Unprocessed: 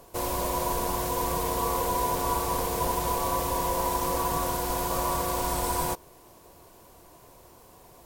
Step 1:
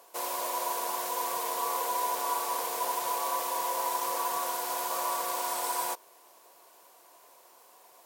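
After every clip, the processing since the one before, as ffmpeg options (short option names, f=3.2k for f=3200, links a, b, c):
-af "highpass=640,volume=-1.5dB"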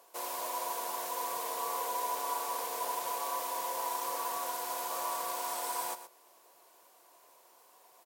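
-af "aecho=1:1:121:0.251,volume=-4.5dB"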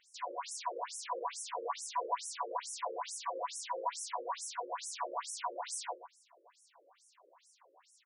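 -af "afftfilt=real='re*between(b*sr/1024,400*pow(7800/400,0.5+0.5*sin(2*PI*2.3*pts/sr))/1.41,400*pow(7800/400,0.5+0.5*sin(2*PI*2.3*pts/sr))*1.41)':imag='im*between(b*sr/1024,400*pow(7800/400,0.5+0.5*sin(2*PI*2.3*pts/sr))/1.41,400*pow(7800/400,0.5+0.5*sin(2*PI*2.3*pts/sr))*1.41)':win_size=1024:overlap=0.75,volume=4.5dB"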